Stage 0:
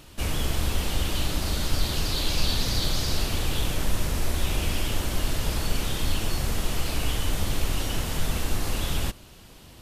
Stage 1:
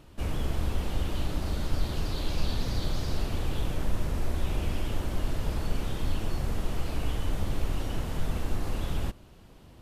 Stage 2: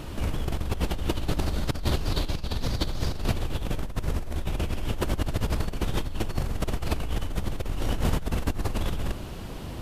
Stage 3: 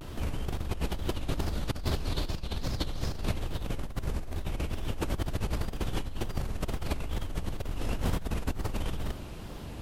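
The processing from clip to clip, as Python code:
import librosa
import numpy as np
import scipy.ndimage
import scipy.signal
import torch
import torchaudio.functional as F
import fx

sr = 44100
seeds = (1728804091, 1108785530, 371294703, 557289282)

y1 = fx.high_shelf(x, sr, hz=2000.0, db=-12.0)
y1 = F.gain(torch.from_numpy(y1), -2.5).numpy()
y2 = fx.over_compress(y1, sr, threshold_db=-35.0, ratio=-1.0)
y2 = F.gain(torch.from_numpy(y2), 8.0).numpy()
y3 = fx.wow_flutter(y2, sr, seeds[0], rate_hz=2.1, depth_cents=150.0)
y3 = F.gain(torch.from_numpy(y3), -4.5).numpy()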